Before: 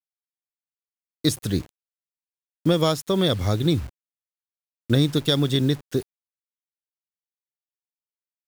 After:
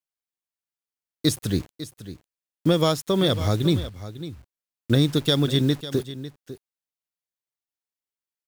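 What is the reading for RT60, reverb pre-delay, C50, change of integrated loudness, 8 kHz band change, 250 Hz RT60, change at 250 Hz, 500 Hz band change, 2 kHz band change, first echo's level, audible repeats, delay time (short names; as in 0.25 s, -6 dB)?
none, none, none, 0.0 dB, 0.0 dB, none, 0.0 dB, 0.0 dB, 0.0 dB, -14.0 dB, 1, 0.55 s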